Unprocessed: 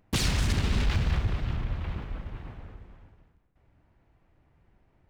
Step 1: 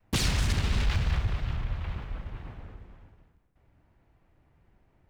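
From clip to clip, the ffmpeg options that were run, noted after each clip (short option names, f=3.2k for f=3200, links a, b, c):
-af "adynamicequalizer=threshold=0.00501:dfrequency=280:dqfactor=0.91:tfrequency=280:tqfactor=0.91:attack=5:release=100:ratio=0.375:range=3.5:mode=cutabove:tftype=bell"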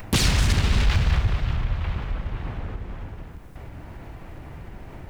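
-af "acompressor=mode=upward:threshold=-28dB:ratio=2.5,volume=6.5dB"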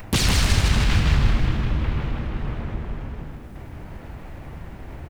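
-filter_complex "[0:a]asplit=8[a][b][c][d][e][f][g][h];[b]adelay=158,afreqshift=-90,volume=-3dB[i];[c]adelay=316,afreqshift=-180,volume=-8.8dB[j];[d]adelay=474,afreqshift=-270,volume=-14.7dB[k];[e]adelay=632,afreqshift=-360,volume=-20.5dB[l];[f]adelay=790,afreqshift=-450,volume=-26.4dB[m];[g]adelay=948,afreqshift=-540,volume=-32.2dB[n];[h]adelay=1106,afreqshift=-630,volume=-38.1dB[o];[a][i][j][k][l][m][n][o]amix=inputs=8:normalize=0"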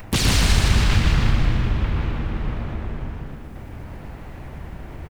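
-af "aecho=1:1:119:0.631"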